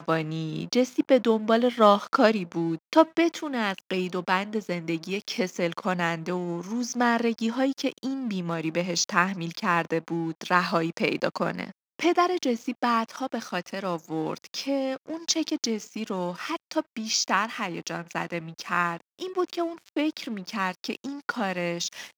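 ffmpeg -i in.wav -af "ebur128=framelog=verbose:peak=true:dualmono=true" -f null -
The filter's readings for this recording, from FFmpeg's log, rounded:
Integrated loudness:
  I:         -23.9 LUFS
  Threshold: -33.9 LUFS
Loudness range:
  LRA:         6.8 LU
  Threshold: -44.1 LUFS
  LRA low:   -26.9 LUFS
  LRA high:  -20.1 LUFS
True peak:
  Peak:       -4.4 dBFS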